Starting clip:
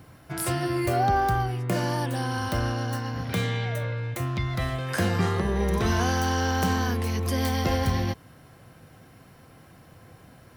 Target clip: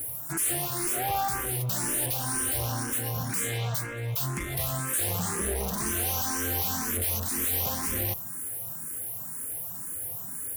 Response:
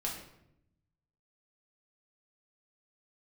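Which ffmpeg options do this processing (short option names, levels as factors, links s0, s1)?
-filter_complex "[0:a]aexciter=amount=12.5:drive=9.3:freq=7300,asoftclip=type=hard:threshold=0.0355,lowshelf=f=160:g=-3,asplit=2[s0][s1];[s1]afreqshift=2[s2];[s0][s2]amix=inputs=2:normalize=1,volume=1.68"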